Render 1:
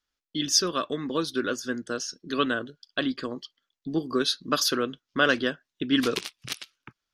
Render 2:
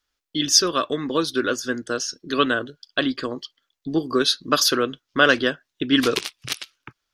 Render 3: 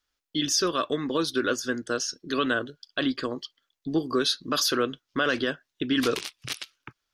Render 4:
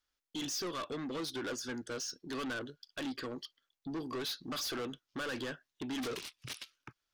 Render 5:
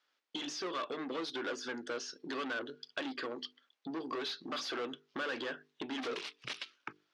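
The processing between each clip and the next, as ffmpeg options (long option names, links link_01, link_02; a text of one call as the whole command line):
ffmpeg -i in.wav -af "equalizer=frequency=200:width_type=o:width=0.57:gain=-6,volume=6dB" out.wav
ffmpeg -i in.wav -af "alimiter=limit=-12dB:level=0:latency=1:release=29,volume=-2.5dB" out.wav
ffmpeg -i in.wav -af "asoftclip=type=tanh:threshold=-29.5dB,volume=-5.5dB" out.wav
ffmpeg -i in.wav -af "acompressor=threshold=-45dB:ratio=6,highpass=310,lowpass=3900,bandreject=frequency=50:width_type=h:width=6,bandreject=frequency=100:width_type=h:width=6,bandreject=frequency=150:width_type=h:width=6,bandreject=frequency=200:width_type=h:width=6,bandreject=frequency=250:width_type=h:width=6,bandreject=frequency=300:width_type=h:width=6,bandreject=frequency=350:width_type=h:width=6,bandreject=frequency=400:width_type=h:width=6,bandreject=frequency=450:width_type=h:width=6,volume=10dB" out.wav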